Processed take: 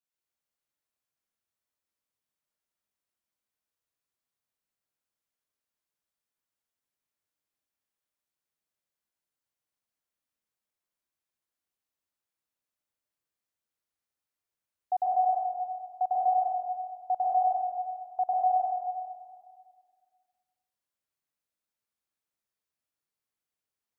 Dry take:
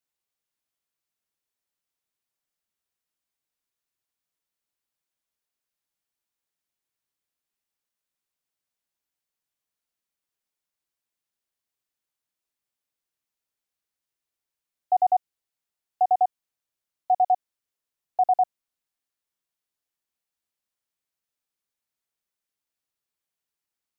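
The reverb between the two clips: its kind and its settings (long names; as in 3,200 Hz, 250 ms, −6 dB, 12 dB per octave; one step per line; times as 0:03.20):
dense smooth reverb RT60 1.9 s, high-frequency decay 0.4×, pre-delay 110 ms, DRR −4 dB
level −7.5 dB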